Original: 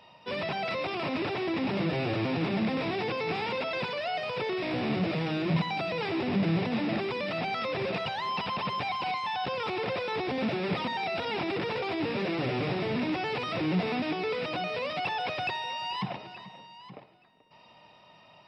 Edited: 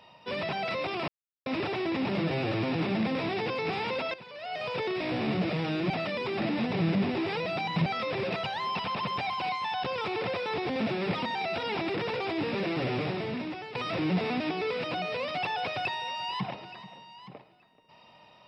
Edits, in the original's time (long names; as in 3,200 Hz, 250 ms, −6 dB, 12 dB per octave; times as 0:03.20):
0:01.08: splice in silence 0.38 s
0:03.76–0:04.27: fade in quadratic, from −16 dB
0:05.52–0:07.48: reverse
0:12.56–0:13.37: fade out, to −12 dB